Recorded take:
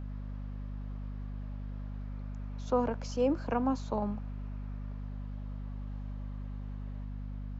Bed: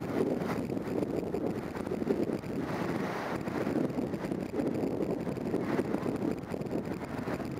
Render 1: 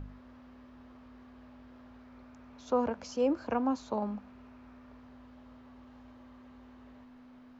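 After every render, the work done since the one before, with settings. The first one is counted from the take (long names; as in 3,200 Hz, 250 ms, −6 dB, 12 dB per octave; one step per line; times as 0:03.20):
hum removal 50 Hz, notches 4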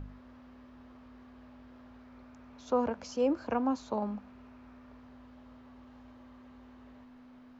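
no processing that can be heard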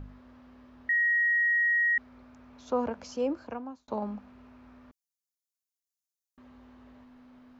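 0:00.89–0:01.98: beep over 1,890 Hz −22 dBFS
0:03.15–0:03.88: fade out
0:04.91–0:06.38: inverse Chebyshev high-pass filter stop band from 1,900 Hz, stop band 70 dB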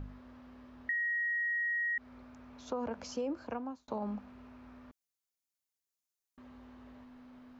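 brickwall limiter −25 dBFS, peak gain reduction 7 dB
downward compressor, threshold −32 dBFS, peak gain reduction 5 dB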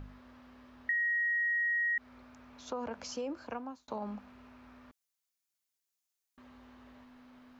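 tilt shelving filter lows −3.5 dB, about 860 Hz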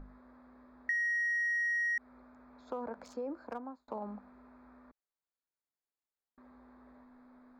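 adaptive Wiener filter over 15 samples
parametric band 100 Hz −15 dB 0.98 octaves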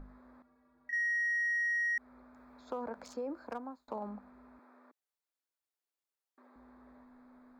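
0:00.42–0:00.93: stiff-string resonator 70 Hz, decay 0.42 s, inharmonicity 0.03
0:02.34–0:04.09: high-shelf EQ 2,500 Hz +5 dB
0:04.59–0:06.56: high-pass filter 280 Hz 24 dB per octave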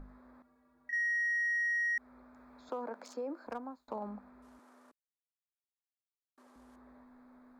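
0:02.69–0:03.47: high-pass filter 230 Hz 24 dB per octave
0:04.42–0:06.76: variable-slope delta modulation 64 kbit/s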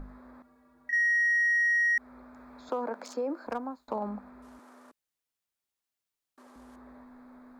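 level +7 dB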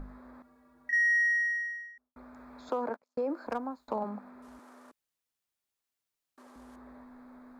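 0:01.14–0:02.16: fade out and dull
0:02.89–0:03.31: noise gate −40 dBFS, range −42 dB
0:04.03–0:04.47: high-pass filter 230 Hz → 100 Hz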